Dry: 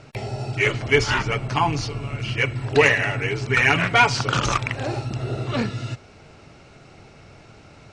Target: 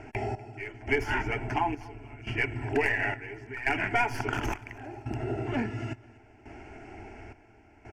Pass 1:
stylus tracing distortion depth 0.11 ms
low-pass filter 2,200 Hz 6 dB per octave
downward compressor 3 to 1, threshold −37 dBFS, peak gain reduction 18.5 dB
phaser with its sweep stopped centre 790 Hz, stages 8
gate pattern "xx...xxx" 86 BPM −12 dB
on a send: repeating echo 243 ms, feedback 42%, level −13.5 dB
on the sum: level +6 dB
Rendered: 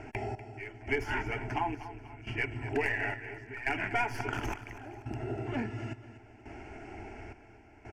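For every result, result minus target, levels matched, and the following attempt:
echo-to-direct +8 dB; downward compressor: peak gain reduction +4.5 dB
stylus tracing distortion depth 0.11 ms
low-pass filter 2,200 Hz 6 dB per octave
downward compressor 3 to 1, threshold −37 dBFS, peak gain reduction 18.5 dB
phaser with its sweep stopped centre 790 Hz, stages 8
gate pattern "xx...xxx" 86 BPM −12 dB
on a send: repeating echo 243 ms, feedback 42%, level −21.5 dB
on the sum: level +6 dB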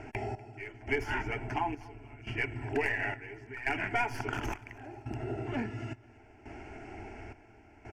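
downward compressor: peak gain reduction +4.5 dB
stylus tracing distortion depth 0.11 ms
low-pass filter 2,200 Hz 6 dB per octave
downward compressor 3 to 1, threshold −30.5 dBFS, peak gain reduction 14.5 dB
phaser with its sweep stopped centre 790 Hz, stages 8
gate pattern "xx...xxx" 86 BPM −12 dB
on a send: repeating echo 243 ms, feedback 42%, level −21.5 dB
on the sum: level +6 dB

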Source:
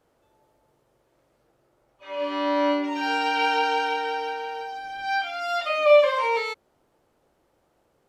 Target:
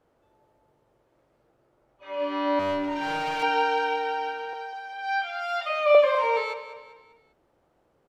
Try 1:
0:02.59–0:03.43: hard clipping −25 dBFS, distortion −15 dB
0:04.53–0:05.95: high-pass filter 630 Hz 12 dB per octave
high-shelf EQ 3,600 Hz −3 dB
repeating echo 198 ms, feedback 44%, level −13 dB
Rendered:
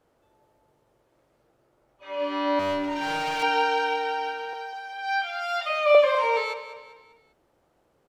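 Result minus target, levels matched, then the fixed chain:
8,000 Hz band +4.5 dB
0:02.59–0:03.43: hard clipping −25 dBFS, distortion −15 dB
0:04.53–0:05.95: high-pass filter 630 Hz 12 dB per octave
high-shelf EQ 3,600 Hz −9.5 dB
repeating echo 198 ms, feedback 44%, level −13 dB

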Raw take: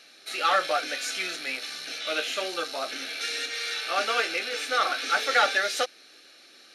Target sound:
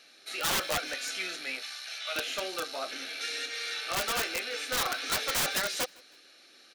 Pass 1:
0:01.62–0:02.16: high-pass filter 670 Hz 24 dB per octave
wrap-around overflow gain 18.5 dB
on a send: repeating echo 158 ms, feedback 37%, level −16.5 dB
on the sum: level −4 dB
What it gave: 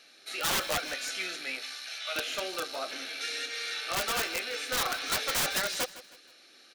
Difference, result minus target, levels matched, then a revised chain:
echo-to-direct +9.5 dB
0:01.62–0:02.16: high-pass filter 670 Hz 24 dB per octave
wrap-around overflow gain 18.5 dB
on a send: repeating echo 158 ms, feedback 37%, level −26 dB
on the sum: level −4 dB

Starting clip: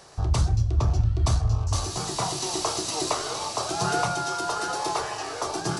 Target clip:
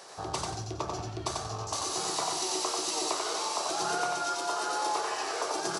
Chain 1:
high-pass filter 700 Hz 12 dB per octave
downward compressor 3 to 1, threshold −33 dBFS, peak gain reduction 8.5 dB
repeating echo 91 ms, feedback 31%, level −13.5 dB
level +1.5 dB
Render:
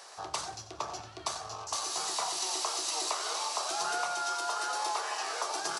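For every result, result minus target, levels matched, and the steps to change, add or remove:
250 Hz band −9.0 dB; echo-to-direct −10 dB
change: high-pass filter 340 Hz 12 dB per octave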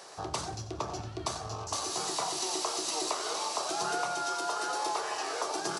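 echo-to-direct −10 dB
change: repeating echo 91 ms, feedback 31%, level −3.5 dB

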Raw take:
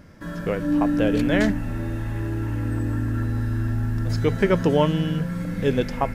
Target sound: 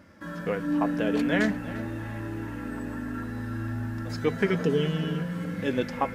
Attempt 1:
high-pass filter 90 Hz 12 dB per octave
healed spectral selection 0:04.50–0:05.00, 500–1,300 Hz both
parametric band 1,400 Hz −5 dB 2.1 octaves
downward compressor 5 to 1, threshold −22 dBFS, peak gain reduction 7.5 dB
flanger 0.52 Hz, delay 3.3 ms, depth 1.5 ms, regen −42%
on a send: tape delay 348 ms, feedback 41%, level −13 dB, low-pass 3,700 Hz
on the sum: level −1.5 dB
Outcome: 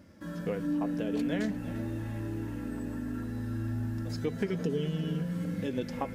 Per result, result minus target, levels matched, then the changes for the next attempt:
downward compressor: peak gain reduction +7.5 dB; 1,000 Hz band −4.5 dB
remove: downward compressor 5 to 1, threshold −22 dBFS, peak gain reduction 7.5 dB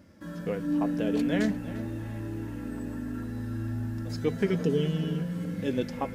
1,000 Hz band −5.0 dB
change: parametric band 1,400 Hz +4 dB 2.1 octaves

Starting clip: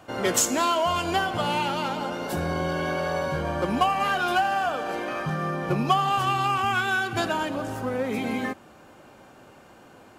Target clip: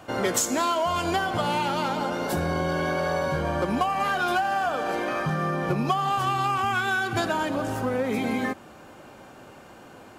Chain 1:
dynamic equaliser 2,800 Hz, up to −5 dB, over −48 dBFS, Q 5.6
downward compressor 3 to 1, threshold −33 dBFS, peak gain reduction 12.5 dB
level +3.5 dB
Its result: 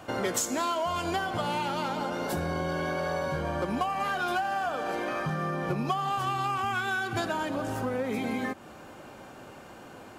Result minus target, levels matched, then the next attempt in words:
downward compressor: peak gain reduction +4.5 dB
dynamic equaliser 2,800 Hz, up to −5 dB, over −48 dBFS, Q 5.6
downward compressor 3 to 1, threshold −26 dBFS, peak gain reduction 8 dB
level +3.5 dB

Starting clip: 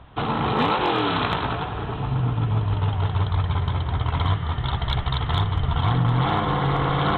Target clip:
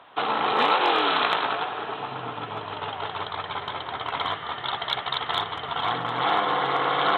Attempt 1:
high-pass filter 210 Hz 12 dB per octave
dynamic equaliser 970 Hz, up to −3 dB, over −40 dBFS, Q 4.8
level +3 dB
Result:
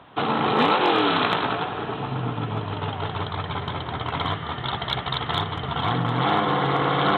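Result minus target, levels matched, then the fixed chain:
250 Hz band +8.0 dB
high-pass filter 510 Hz 12 dB per octave
dynamic equaliser 970 Hz, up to −3 dB, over −40 dBFS, Q 4.8
level +3 dB

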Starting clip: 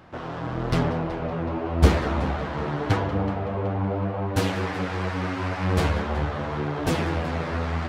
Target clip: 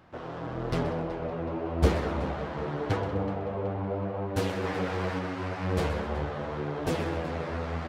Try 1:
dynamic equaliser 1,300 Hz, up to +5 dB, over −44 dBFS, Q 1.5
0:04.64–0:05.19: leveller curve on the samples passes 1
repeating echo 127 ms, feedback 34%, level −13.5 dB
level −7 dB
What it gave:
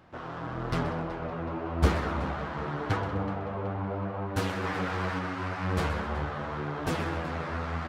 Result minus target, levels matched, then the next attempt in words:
500 Hz band −3.0 dB
dynamic equaliser 480 Hz, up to +5 dB, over −44 dBFS, Q 1.5
0:04.64–0:05.19: leveller curve on the samples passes 1
repeating echo 127 ms, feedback 34%, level −13.5 dB
level −7 dB

